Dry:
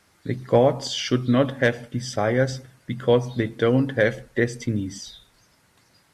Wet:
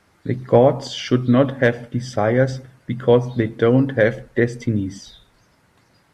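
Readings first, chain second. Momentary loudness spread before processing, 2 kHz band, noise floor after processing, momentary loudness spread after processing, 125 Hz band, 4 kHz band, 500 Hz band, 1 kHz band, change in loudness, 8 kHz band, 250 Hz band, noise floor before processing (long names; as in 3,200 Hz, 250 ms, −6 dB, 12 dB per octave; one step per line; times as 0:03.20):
13 LU, +2.0 dB, −59 dBFS, 12 LU, +4.5 dB, −1.5 dB, +4.0 dB, +3.5 dB, +4.0 dB, can't be measured, +4.5 dB, −61 dBFS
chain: high-shelf EQ 2,800 Hz −9.5 dB
level +4.5 dB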